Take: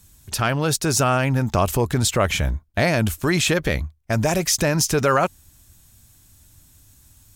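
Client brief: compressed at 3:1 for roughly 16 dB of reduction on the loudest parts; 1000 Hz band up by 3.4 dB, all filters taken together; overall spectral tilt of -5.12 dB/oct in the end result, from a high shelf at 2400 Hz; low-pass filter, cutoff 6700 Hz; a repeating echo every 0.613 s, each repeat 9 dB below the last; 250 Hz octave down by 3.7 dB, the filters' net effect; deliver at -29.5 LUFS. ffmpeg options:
-af "lowpass=6.7k,equalizer=f=250:t=o:g=-6,equalizer=f=1k:t=o:g=7,highshelf=f=2.4k:g=-9,acompressor=threshold=-35dB:ratio=3,aecho=1:1:613|1226|1839|2452:0.355|0.124|0.0435|0.0152,volume=5dB"

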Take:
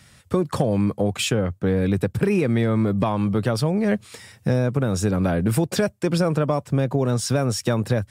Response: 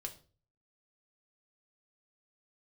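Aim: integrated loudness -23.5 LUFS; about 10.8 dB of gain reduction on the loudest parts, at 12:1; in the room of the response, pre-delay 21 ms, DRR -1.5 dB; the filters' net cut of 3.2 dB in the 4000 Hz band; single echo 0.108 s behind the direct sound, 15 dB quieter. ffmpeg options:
-filter_complex "[0:a]equalizer=f=4k:t=o:g=-4.5,acompressor=threshold=-28dB:ratio=12,aecho=1:1:108:0.178,asplit=2[a][b];[1:a]atrim=start_sample=2205,adelay=21[c];[b][c]afir=irnorm=-1:irlink=0,volume=4dB[d];[a][d]amix=inputs=2:normalize=0,volume=5dB"

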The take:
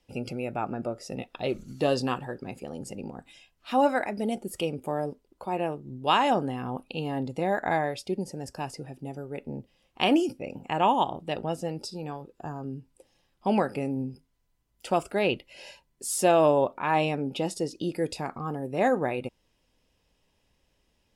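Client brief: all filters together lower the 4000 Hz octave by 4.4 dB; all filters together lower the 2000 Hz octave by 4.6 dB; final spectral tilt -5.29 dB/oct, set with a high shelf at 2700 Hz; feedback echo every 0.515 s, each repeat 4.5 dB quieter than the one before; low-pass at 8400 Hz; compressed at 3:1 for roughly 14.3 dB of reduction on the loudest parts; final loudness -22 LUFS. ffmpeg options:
-af "lowpass=8.4k,equalizer=f=2k:t=o:g=-6,highshelf=f=2.7k:g=4,equalizer=f=4k:t=o:g=-7,acompressor=threshold=-37dB:ratio=3,aecho=1:1:515|1030|1545|2060|2575|3090|3605|4120|4635:0.596|0.357|0.214|0.129|0.0772|0.0463|0.0278|0.0167|0.01,volume=16.5dB"

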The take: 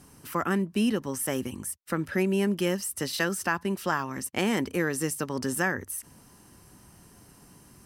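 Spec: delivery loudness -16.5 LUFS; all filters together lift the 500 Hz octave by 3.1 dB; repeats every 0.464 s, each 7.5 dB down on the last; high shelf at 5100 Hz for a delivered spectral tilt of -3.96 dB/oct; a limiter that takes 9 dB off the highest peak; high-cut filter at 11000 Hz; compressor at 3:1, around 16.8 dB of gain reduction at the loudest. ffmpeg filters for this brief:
-af "lowpass=11k,equalizer=f=500:t=o:g=4,highshelf=f=5.1k:g=6,acompressor=threshold=-44dB:ratio=3,alimiter=level_in=8.5dB:limit=-24dB:level=0:latency=1,volume=-8.5dB,aecho=1:1:464|928|1392|1856|2320:0.422|0.177|0.0744|0.0312|0.0131,volume=27dB"

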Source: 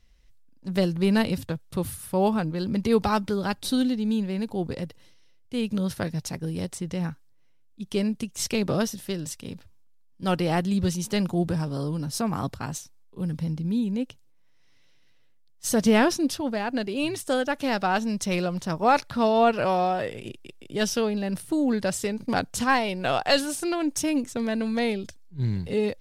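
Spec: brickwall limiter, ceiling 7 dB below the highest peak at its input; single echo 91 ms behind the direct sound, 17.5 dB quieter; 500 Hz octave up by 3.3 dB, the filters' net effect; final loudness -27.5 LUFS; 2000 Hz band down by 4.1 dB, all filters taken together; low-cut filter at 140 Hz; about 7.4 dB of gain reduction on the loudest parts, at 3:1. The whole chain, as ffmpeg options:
-af "highpass=140,equalizer=f=500:t=o:g=4.5,equalizer=f=2k:t=o:g=-6,acompressor=threshold=-23dB:ratio=3,alimiter=limit=-19.5dB:level=0:latency=1,aecho=1:1:91:0.133,volume=2.5dB"

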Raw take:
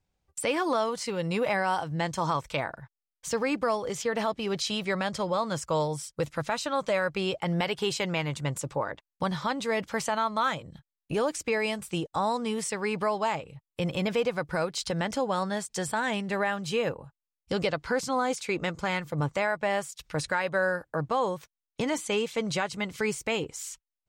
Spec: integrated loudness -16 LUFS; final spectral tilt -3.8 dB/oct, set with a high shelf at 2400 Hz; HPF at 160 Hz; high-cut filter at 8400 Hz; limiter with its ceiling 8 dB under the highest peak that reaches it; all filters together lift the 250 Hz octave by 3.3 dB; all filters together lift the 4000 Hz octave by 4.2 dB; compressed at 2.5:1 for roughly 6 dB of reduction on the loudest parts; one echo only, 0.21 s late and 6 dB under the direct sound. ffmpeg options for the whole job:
-af "highpass=160,lowpass=8.4k,equalizer=f=250:t=o:g=6,highshelf=f=2.4k:g=3,equalizer=f=4k:t=o:g=3,acompressor=threshold=-30dB:ratio=2.5,alimiter=limit=-23dB:level=0:latency=1,aecho=1:1:210:0.501,volume=17dB"

